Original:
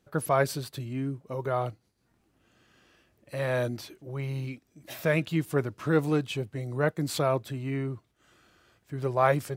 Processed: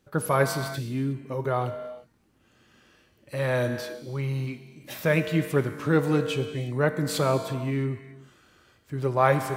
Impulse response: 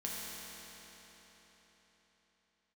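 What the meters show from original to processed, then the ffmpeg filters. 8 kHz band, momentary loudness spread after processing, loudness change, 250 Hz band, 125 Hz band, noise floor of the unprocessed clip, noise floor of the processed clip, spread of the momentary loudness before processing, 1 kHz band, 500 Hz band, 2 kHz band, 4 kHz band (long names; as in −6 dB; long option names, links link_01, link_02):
+3.0 dB, 13 LU, +3.0 dB, +3.0 dB, +3.5 dB, −71 dBFS, −64 dBFS, 13 LU, +2.5 dB, +2.5 dB, +3.5 dB, +3.5 dB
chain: -filter_complex "[0:a]bandreject=frequency=690:width=12,asplit=2[link_01][link_02];[1:a]atrim=start_sample=2205,afade=type=out:start_time=0.42:duration=0.01,atrim=end_sample=18963[link_03];[link_02][link_03]afir=irnorm=-1:irlink=0,volume=-5dB[link_04];[link_01][link_04]amix=inputs=2:normalize=0"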